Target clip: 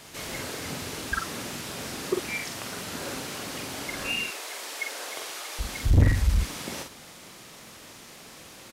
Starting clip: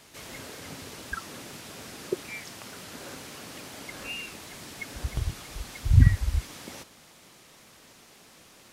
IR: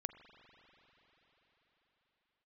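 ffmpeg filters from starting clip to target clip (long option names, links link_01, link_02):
-filter_complex "[0:a]asettb=1/sr,asplit=3[link_01][link_02][link_03];[link_01]atrim=end=4.264[link_04];[link_02]atrim=start=4.26:end=5.59,asetpts=PTS-STARTPTS,afade=type=in:duration=0.004:curve=qsin,afade=type=out:start_time=1.326:duration=0.004:curve=qsin,highpass=frequency=420:width=0.5412,highpass=frequency=420:width=1.3066[link_05];[link_03]atrim=start=5.586[link_06];[link_04][link_05]acrossfade=duration=0.004:curve1=hsin:curve2=qsin[link_07];[link_07][link_06]acrossfade=duration=0.004:curve1=qsin:curve2=hsin,asoftclip=type=tanh:threshold=-22dB,asplit=2[link_08][link_09];[link_09]adelay=46,volume=-5dB[link_10];[link_08][link_10]amix=inputs=2:normalize=0,volume=6dB"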